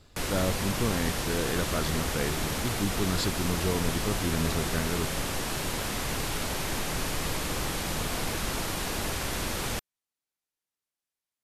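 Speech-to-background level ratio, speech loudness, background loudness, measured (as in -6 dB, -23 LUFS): -1.0 dB, -32.0 LUFS, -31.0 LUFS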